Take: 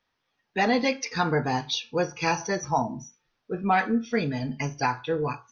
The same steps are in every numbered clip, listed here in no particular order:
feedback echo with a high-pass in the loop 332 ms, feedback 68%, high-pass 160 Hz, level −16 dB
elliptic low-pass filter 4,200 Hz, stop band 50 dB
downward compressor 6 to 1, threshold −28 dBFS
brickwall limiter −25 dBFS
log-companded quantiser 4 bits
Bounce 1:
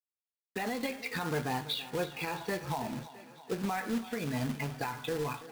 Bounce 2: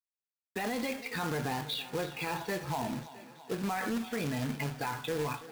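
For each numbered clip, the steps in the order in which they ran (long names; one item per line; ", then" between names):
elliptic low-pass filter, then log-companded quantiser, then downward compressor, then brickwall limiter, then feedback echo with a high-pass in the loop
brickwall limiter, then elliptic low-pass filter, then downward compressor, then log-companded quantiser, then feedback echo with a high-pass in the loop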